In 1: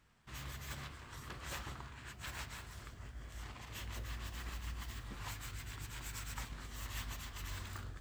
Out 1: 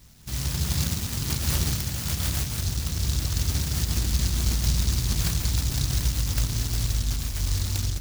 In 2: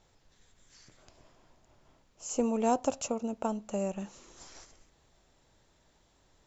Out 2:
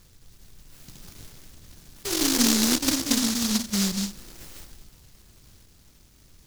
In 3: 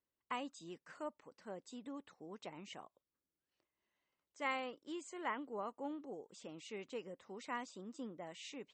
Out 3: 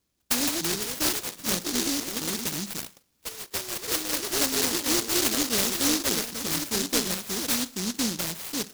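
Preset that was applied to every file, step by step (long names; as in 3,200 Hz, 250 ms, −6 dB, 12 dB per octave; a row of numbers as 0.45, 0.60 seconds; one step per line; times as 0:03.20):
treble cut that deepens with the level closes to 310 Hz, closed at −35 dBFS
bass and treble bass +4 dB, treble −9 dB
soft clipping −26.5 dBFS
four-comb reverb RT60 0.4 s, combs from 33 ms, DRR 15 dB
delay with pitch and tempo change per echo 212 ms, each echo +3 semitones, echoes 3
short delay modulated by noise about 5,100 Hz, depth 0.47 ms
normalise the peak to −12 dBFS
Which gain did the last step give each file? +16.5, +10.0, +17.5 decibels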